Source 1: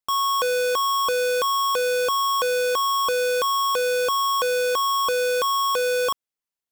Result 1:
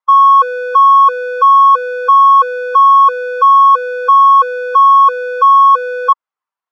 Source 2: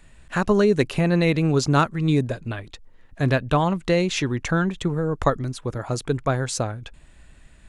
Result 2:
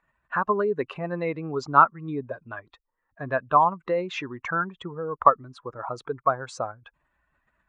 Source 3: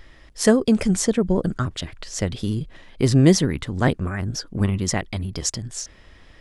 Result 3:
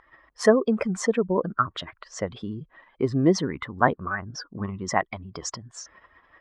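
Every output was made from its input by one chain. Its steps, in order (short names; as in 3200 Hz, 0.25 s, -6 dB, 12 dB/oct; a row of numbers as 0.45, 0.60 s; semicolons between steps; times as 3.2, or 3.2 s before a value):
spectral contrast raised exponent 1.6; band-pass 1100 Hz, Q 3; normalise peaks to -2 dBFS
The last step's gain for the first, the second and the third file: +16.5, +10.5, +16.5 dB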